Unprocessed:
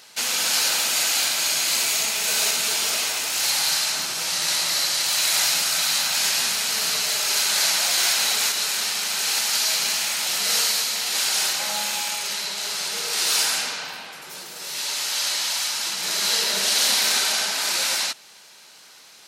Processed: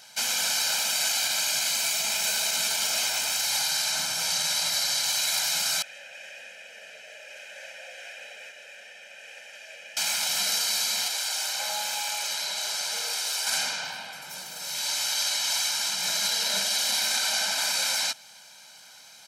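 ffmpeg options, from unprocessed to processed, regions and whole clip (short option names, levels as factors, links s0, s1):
-filter_complex "[0:a]asettb=1/sr,asplit=3[s0][s1][s2];[s0]atrim=end=5.824[s3];[s1]atrim=start=5.82:end=9.97,asetpts=PTS-STARTPTS,afade=t=in:d=0.004:c=qsin,afade=t=out:st=4.146:d=0.004:c=qsin,asplit=3[s4][s5][s6];[s4]bandpass=f=530:t=q:w=8,volume=1[s7];[s5]bandpass=f=1840:t=q:w=8,volume=0.501[s8];[s6]bandpass=f=2480:t=q:w=8,volume=0.355[s9];[s7][s8][s9]amix=inputs=3:normalize=0,equalizer=f=4200:t=o:w=0.43:g=-13.5[s10];[s2]atrim=start=9.966[s11];[s3][s10]acrossfade=d=0.004:c1=hsin:c2=qsin[s12];[s12][s11]acrossfade=d=0.004:c1=qsin:c2=hsin,asettb=1/sr,asplit=3[s13][s14][s15];[s13]atrim=end=11.074[s16];[s14]atrim=start=11.07:end=13.47,asetpts=PTS-STARTPTS,afade=t=in:d=0.004:c=qsin,afade=t=out:st=2.396:d=0.004:c=qsin,lowshelf=f=310:t=q:w=1.5:g=-6.5,acompressor=threshold=0.0631:ratio=6:attack=3.2:release=140:knee=1:detection=peak[s17];[s15]atrim=start=13.466[s18];[s16][s17]acrossfade=d=0.004:c1=hsin:c2=qsin[s19];[s19][s18]acrossfade=d=0.004:c1=qsin:c2=hsin,equalizer=f=5900:t=o:w=0.28:g=2.5,alimiter=limit=0.188:level=0:latency=1:release=39,aecho=1:1:1.3:0.73,volume=0.631"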